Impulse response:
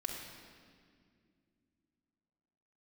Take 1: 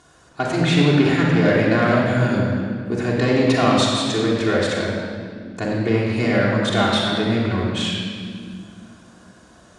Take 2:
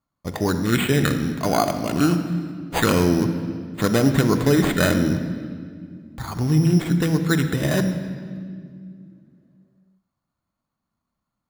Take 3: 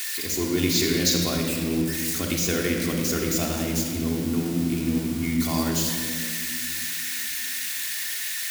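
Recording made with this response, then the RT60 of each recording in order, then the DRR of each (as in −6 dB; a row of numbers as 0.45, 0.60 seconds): 3; 2.2, 2.3, 2.2 seconds; −5.5, 6.5, −1.0 decibels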